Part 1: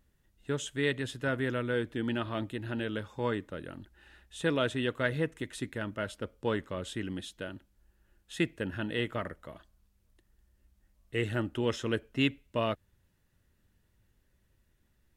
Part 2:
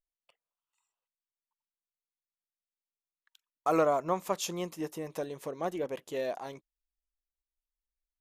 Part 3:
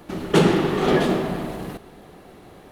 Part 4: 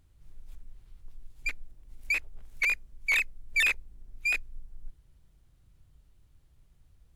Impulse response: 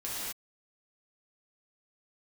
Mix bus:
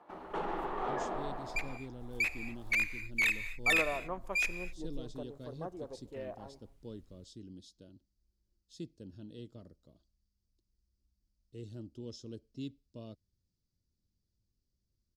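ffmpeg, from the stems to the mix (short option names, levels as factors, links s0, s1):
-filter_complex "[0:a]firequalizer=gain_entry='entry(260,0);entry(840,-15);entry(1900,-27);entry(4700,10);entry(8900,-8)':delay=0.05:min_phase=1,adelay=400,volume=0.251[s0];[1:a]afwtdn=0.00708,volume=0.316,asplit=2[s1][s2];[s2]volume=0.0794[s3];[2:a]alimiter=limit=0.251:level=0:latency=1:release=45,bandpass=f=920:t=q:w=2.2:csg=0,volume=0.531[s4];[3:a]adelay=100,volume=0.596,asplit=2[s5][s6];[s6]volume=0.188[s7];[4:a]atrim=start_sample=2205[s8];[s3][s7]amix=inputs=2:normalize=0[s9];[s9][s8]afir=irnorm=-1:irlink=0[s10];[s0][s1][s4][s5][s10]amix=inputs=5:normalize=0"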